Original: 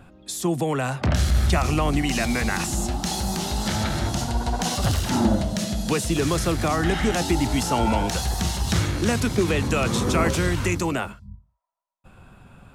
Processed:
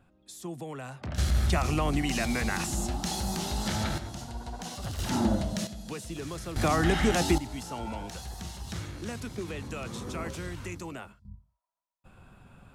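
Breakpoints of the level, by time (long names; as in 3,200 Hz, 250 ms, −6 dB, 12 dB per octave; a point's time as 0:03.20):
−15 dB
from 0:01.18 −5.5 dB
from 0:03.98 −14 dB
from 0:04.99 −6 dB
from 0:05.67 −15 dB
from 0:06.56 −2.5 dB
from 0:07.38 −15 dB
from 0:11.25 −5.5 dB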